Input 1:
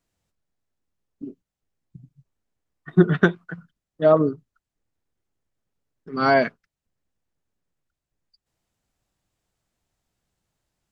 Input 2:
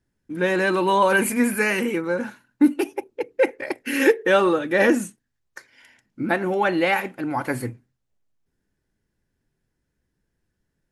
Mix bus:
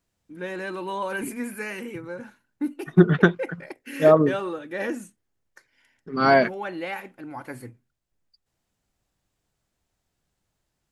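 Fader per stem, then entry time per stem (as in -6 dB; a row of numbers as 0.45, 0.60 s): +0.5, -11.5 dB; 0.00, 0.00 s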